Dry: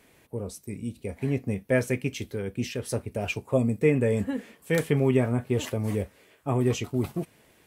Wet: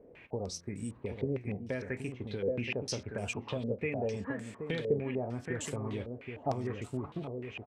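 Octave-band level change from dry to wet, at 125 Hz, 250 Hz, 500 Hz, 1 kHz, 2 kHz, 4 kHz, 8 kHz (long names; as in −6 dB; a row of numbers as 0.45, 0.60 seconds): −10.0, −10.0, −8.0, −4.0, −7.0, −4.5, −5.0 decibels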